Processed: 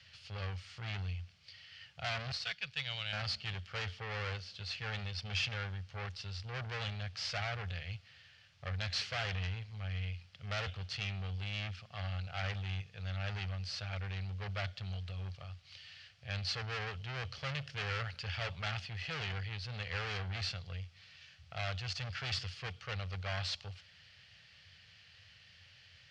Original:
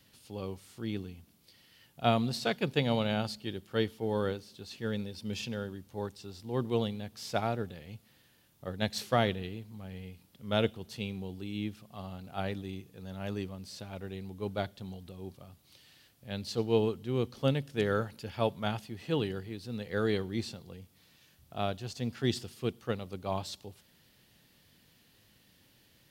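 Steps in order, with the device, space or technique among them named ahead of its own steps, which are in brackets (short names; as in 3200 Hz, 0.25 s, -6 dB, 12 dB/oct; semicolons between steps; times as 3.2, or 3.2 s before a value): 2.32–3.13 passive tone stack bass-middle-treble 5-5-5; scooped metal amplifier (tube stage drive 40 dB, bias 0.7; speaker cabinet 86–4400 Hz, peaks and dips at 88 Hz +10 dB, 240 Hz -8 dB, 360 Hz -5 dB, 960 Hz -9 dB, 3700 Hz -8 dB; passive tone stack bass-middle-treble 10-0-10); gain +17.5 dB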